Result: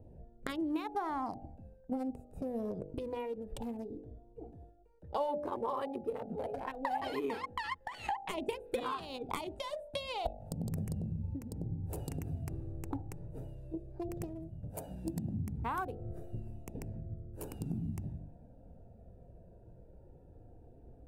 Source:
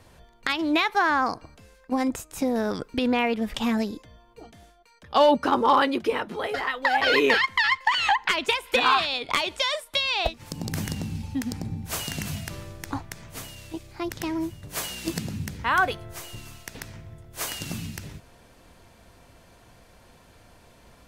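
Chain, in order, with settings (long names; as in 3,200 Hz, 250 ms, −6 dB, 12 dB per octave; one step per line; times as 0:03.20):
adaptive Wiener filter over 41 samples
flat-topped bell 2,900 Hz −13 dB 2.7 octaves
hum removal 49.19 Hz, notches 17
downward compressor 4 to 1, threshold −35 dBFS, peak gain reduction 16 dB
flanger 0.12 Hz, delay 0.3 ms, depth 2.3 ms, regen −47%
level +4.5 dB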